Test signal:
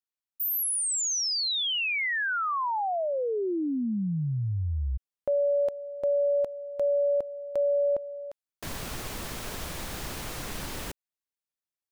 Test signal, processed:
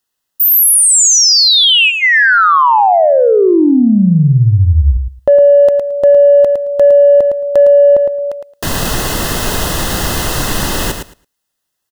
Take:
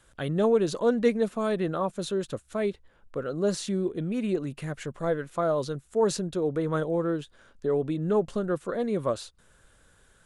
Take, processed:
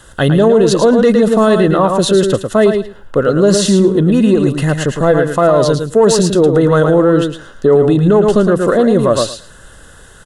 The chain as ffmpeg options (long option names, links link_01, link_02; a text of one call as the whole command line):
ffmpeg -i in.wav -filter_complex "[0:a]asplit=2[link_01][link_02];[link_02]asoftclip=type=tanh:threshold=-23dB,volume=-6dB[link_03];[link_01][link_03]amix=inputs=2:normalize=0,asuperstop=centerf=2300:order=12:qfactor=6.3,aecho=1:1:110|220|330:0.447|0.067|0.0101,alimiter=level_in=17.5dB:limit=-1dB:release=50:level=0:latency=1,volume=-1.5dB" out.wav